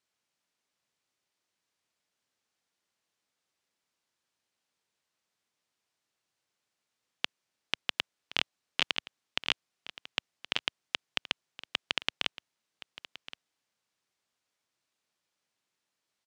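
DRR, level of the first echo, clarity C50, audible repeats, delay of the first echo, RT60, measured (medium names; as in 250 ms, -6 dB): no reverb, -16.5 dB, no reverb, 1, 1071 ms, no reverb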